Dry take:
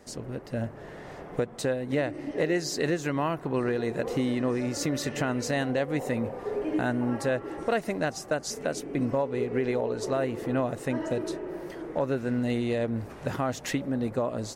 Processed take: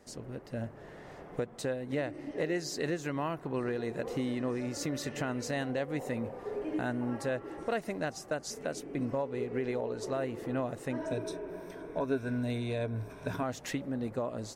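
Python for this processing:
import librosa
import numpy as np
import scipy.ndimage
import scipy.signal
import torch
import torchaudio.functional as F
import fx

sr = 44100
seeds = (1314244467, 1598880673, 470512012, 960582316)

y = fx.ripple_eq(x, sr, per_octave=1.6, db=11, at=(10.98, 13.43))
y = y * librosa.db_to_amplitude(-6.0)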